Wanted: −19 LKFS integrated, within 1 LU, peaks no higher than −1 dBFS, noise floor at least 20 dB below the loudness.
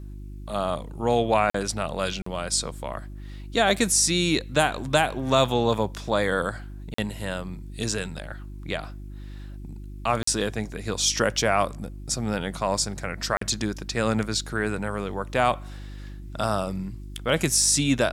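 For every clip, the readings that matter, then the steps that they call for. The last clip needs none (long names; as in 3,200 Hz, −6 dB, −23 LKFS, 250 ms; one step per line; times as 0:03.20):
number of dropouts 5; longest dropout 44 ms; mains hum 50 Hz; hum harmonics up to 350 Hz; level of the hum −36 dBFS; integrated loudness −25.0 LKFS; sample peak −4.0 dBFS; target loudness −19.0 LKFS
→ repair the gap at 0:01.50/0:02.22/0:06.94/0:10.23/0:13.37, 44 ms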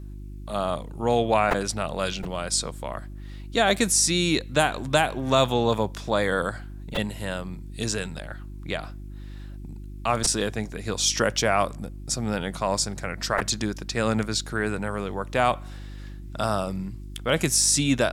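number of dropouts 0; mains hum 50 Hz; hum harmonics up to 350 Hz; level of the hum −36 dBFS
→ hum removal 50 Hz, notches 7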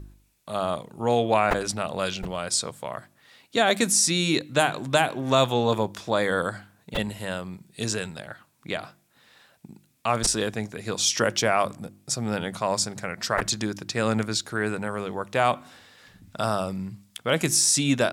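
mains hum none found; integrated loudness −25.0 LKFS; sample peak −4.5 dBFS; target loudness −19.0 LKFS
→ level +6 dB
brickwall limiter −1 dBFS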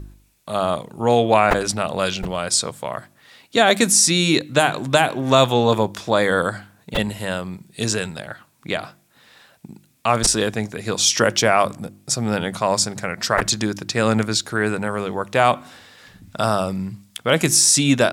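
integrated loudness −19.0 LKFS; sample peak −1.0 dBFS; background noise floor −58 dBFS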